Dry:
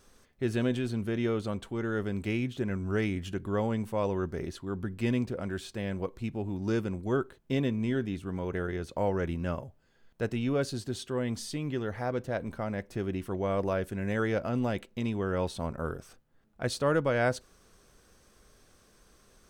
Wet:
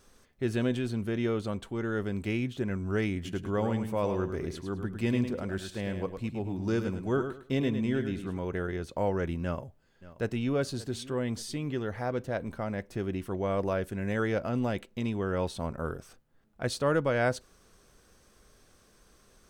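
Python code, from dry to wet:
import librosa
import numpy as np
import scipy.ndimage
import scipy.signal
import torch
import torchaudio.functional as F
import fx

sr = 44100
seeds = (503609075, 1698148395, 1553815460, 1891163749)

y = fx.echo_feedback(x, sr, ms=105, feedback_pct=24, wet_db=-8.0, at=(3.14, 8.38))
y = fx.echo_throw(y, sr, start_s=9.43, length_s=1.13, ms=580, feedback_pct=40, wet_db=-18.0)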